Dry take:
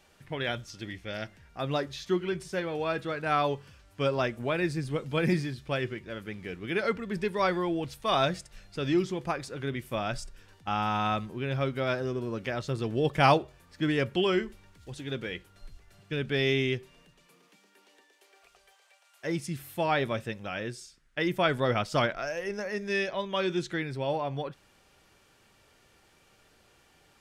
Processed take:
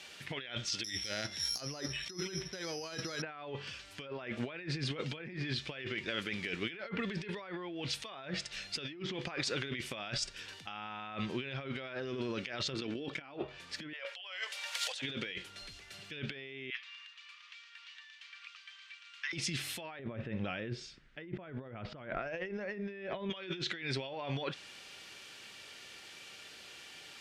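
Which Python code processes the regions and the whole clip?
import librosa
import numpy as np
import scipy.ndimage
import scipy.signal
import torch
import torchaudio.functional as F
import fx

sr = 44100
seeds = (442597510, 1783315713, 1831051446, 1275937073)

y = fx.chain(x, sr, fx.low_shelf(hz=75.0, db=10.0),
    fx.resample_bad(factor=8, down='filtered', up='zero_stuff'), at=(0.84, 3.22))
y = fx.chain(y, sr, fx.peak_eq(hz=87.0, db=-4.0, octaves=1.5),
    fx.small_body(hz=(280.0, 1400.0, 2300.0), ring_ms=50, db=9),
    fx.level_steps(step_db=10), at=(12.74, 13.34))
y = fx.chain(y, sr, fx.steep_highpass(hz=510.0, slope=72),
    fx.high_shelf(hz=11000.0, db=5.0),
    fx.band_squash(depth_pct=100), at=(13.93, 15.02))
y = fx.chain(y, sr, fx.ellip_highpass(hz=1100.0, order=4, stop_db=50),
    fx.air_absorb(metres=150.0), at=(16.7, 19.33))
y = fx.chain(y, sr, fx.lowpass(hz=3400.0, slope=6),
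    fx.tilt_eq(slope=-3.0), at=(19.99, 23.3))
y = fx.env_lowpass_down(y, sr, base_hz=2000.0, full_db=-23.5)
y = fx.weighting(y, sr, curve='D')
y = fx.over_compress(y, sr, threshold_db=-38.0, ratio=-1.0)
y = y * librosa.db_to_amplitude(-3.0)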